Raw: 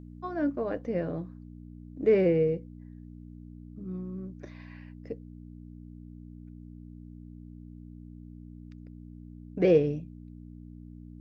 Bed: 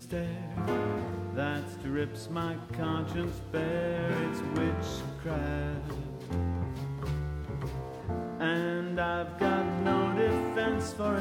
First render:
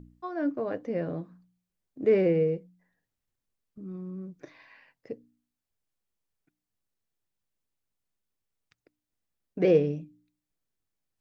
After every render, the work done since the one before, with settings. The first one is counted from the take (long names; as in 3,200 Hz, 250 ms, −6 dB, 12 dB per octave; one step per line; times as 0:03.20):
hum removal 60 Hz, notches 5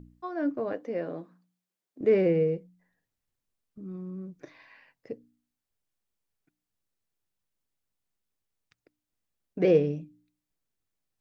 0:00.73–0:02.01: high-pass filter 270 Hz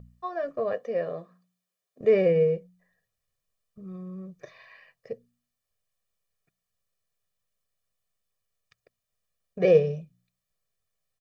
low-shelf EQ 120 Hz −4 dB
comb filter 1.7 ms, depth 99%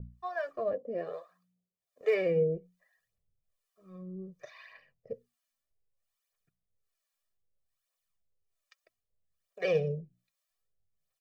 phase shifter 0.63 Hz, delay 3.8 ms, feedback 49%
two-band tremolo in antiphase 1.2 Hz, depth 100%, crossover 560 Hz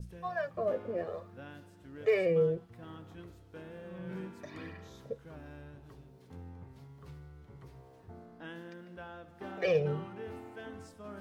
mix in bed −16.5 dB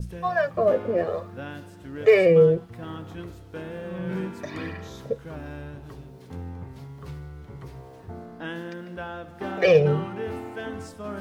level +11.5 dB